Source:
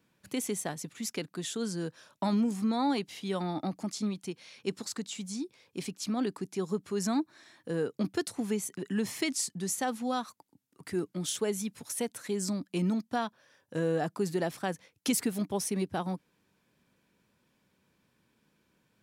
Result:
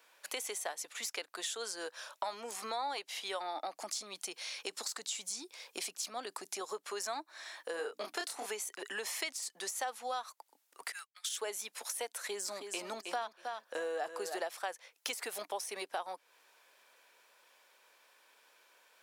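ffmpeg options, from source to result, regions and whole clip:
ffmpeg -i in.wav -filter_complex "[0:a]asettb=1/sr,asplit=3[link_01][link_02][link_03];[link_01]atrim=end=3.824[link_04];[link_02]atrim=start=3.82:end=6.61,asetpts=PTS-STARTPTS,afade=type=in:duration=0.004:curve=qsin,afade=type=out:start_time=2.786:duration=0.004:curve=qsin,bass=frequency=250:gain=12,treble=frequency=4000:gain=5,acompressor=threshold=-27dB:ratio=4:attack=3.2:release=140:knee=1:detection=peak[link_05];[link_03]atrim=start=6.606[link_06];[link_04][link_05]acrossfade=duration=0.004:curve1=hsin:curve2=qsin[link_07];[link_07][link_06]acrossfade=duration=0.004:curve1=qsin:curve2=hsin,asettb=1/sr,asplit=3[link_08][link_09][link_10];[link_08]atrim=end=7.764[link_11];[link_09]atrim=start=7.76:end=8.46,asetpts=PTS-STARTPTS,afade=type=in:duration=0.004:curve=qsin,afade=type=out:start_time=0.696:duration=0.004:curve=qsin,bandreject=frequency=510:width=8.3,aeval=exprs='val(0)+0.00631*(sin(2*PI*60*n/s)+sin(2*PI*2*60*n/s)/2+sin(2*PI*3*60*n/s)/3+sin(2*PI*4*60*n/s)/4+sin(2*PI*5*60*n/s)/5)':channel_layout=same,asplit=2[link_12][link_13];[link_13]adelay=29,volume=-3dB[link_14];[link_12][link_14]amix=inputs=2:normalize=0,atrim=end_sample=30870[link_15];[link_10]atrim=start=8.456[link_16];[link_11][link_15]acrossfade=duration=0.004:curve1=hsin:curve2=qsin[link_17];[link_17][link_16]acrossfade=duration=0.004:curve1=qsin:curve2=hsin,asettb=1/sr,asplit=3[link_18][link_19][link_20];[link_18]atrim=end=10.924[link_21];[link_19]atrim=start=10.92:end=11.38,asetpts=PTS-STARTPTS,afade=type=in:duration=0.004:curve=qsin,afade=type=out:start_time=0.456:duration=0.004:curve=qsin,highpass=frequency=1400:width=0.5412,highpass=frequency=1400:width=1.3066,agate=range=-33dB:threshold=-51dB:ratio=3:release=100:detection=peak[link_22];[link_20]atrim=start=11.376[link_23];[link_21][link_22]acrossfade=duration=0.004:curve1=hsin:curve2=qsin[link_24];[link_24][link_23]acrossfade=duration=0.004:curve1=qsin:curve2=hsin,asettb=1/sr,asplit=3[link_25][link_26][link_27];[link_25]atrim=end=12.074[link_28];[link_26]atrim=start=12.07:end=14.45,asetpts=PTS-STARTPTS,afade=type=in:duration=0.004:curve=qsin,afade=type=out:start_time=2.376:duration=0.004:curve=qsin,equalizer=frequency=220:width_type=o:width=1.6:gain=4,aecho=1:1:317|634:0.316|0.0538,atrim=end_sample=104958[link_29];[link_27]atrim=start=14.446[link_30];[link_28][link_29]acrossfade=duration=0.004:curve1=hsin:curve2=qsin[link_31];[link_31][link_30]acrossfade=duration=0.004:curve1=qsin:curve2=hsin,deesser=0.7,highpass=frequency=560:width=0.5412,highpass=frequency=560:width=1.3066,acompressor=threshold=-50dB:ratio=3,volume=10.5dB" out.wav

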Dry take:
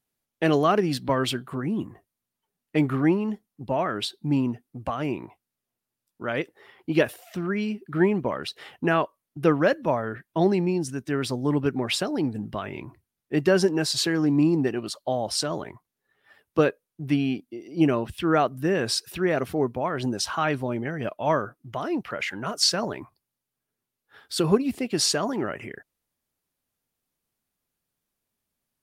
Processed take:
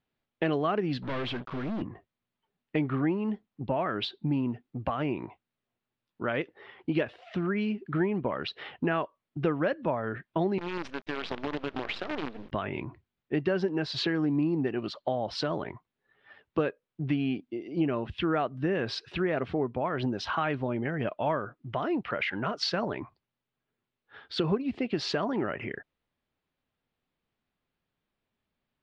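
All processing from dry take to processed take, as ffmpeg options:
ffmpeg -i in.wav -filter_complex "[0:a]asettb=1/sr,asplit=3[link_01][link_02][link_03];[link_01]atrim=end=1.024[link_04];[link_02]atrim=start=1.02:end=1.82,asetpts=PTS-STARTPTS,afade=type=in:duration=0.004:curve=qsin,afade=type=out:start_time=0.796:duration=0.004:curve=qsin,aeval=exprs='(tanh(44.7*val(0)+0.3)-tanh(0.3))/44.7':channel_layout=same,acrusher=bits=6:mix=0:aa=0.5[link_05];[link_03]atrim=start=1.816[link_06];[link_04][link_05]acrossfade=duration=0.004:curve1=hsin:curve2=qsin[link_07];[link_07][link_06]acrossfade=duration=0.004:curve1=qsin:curve2=hsin,asettb=1/sr,asplit=3[link_08][link_09][link_10];[link_08]atrim=end=10.584[link_11];[link_09]atrim=start=10.58:end=12.52,asetpts=PTS-STARTPTS,afade=type=in:duration=0.004:curve=qsin,afade=type=out:start_time=1.936:duration=0.004:curve=qsin,highpass=360,acompressor=threshold=-30dB:ratio=16:attack=3.2:release=140:knee=1:detection=peak,acrusher=bits=6:dc=4:mix=0:aa=0.000001[link_12];[link_10]atrim=start=12.516[link_13];[link_11][link_12]acrossfade=duration=0.004:curve1=hsin:curve2=qsin[link_14];[link_14][link_13]acrossfade=duration=0.004:curve1=qsin:curve2=hsin,lowpass=frequency=3700:width=0.5412,lowpass=frequency=3700:width=1.3066,acompressor=threshold=-29dB:ratio=3,volume=2dB" out.wav

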